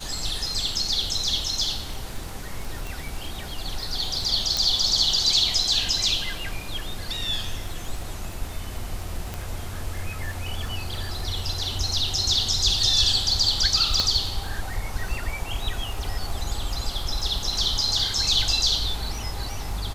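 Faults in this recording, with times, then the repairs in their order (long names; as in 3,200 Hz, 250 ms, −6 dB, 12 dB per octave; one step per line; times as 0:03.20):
surface crackle 21 per second −30 dBFS
0:02.87: click
0:04.57: click
0:09.34: click
0:14.00: click −9 dBFS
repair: click removal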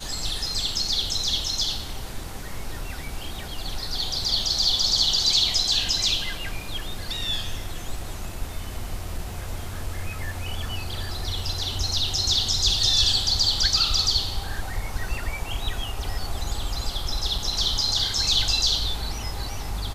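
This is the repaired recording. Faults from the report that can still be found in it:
0:09.34: click
0:14.00: click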